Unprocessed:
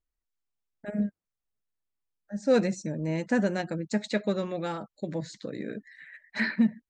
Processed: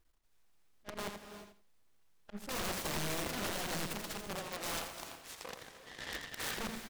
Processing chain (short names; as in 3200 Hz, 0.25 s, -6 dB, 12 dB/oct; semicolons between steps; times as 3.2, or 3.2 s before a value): half-wave gain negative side -12 dB; 4.39–6.57 HPF 1200 Hz 12 dB/oct; auto swell 0.707 s; limiter -29.5 dBFS, peak gain reduction 10.5 dB; wrapped overs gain 46.5 dB; feedback echo 84 ms, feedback 23%, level -7 dB; non-linear reverb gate 0.38 s rising, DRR 9.5 dB; noise-modulated delay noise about 1400 Hz, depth 0.081 ms; gain +14.5 dB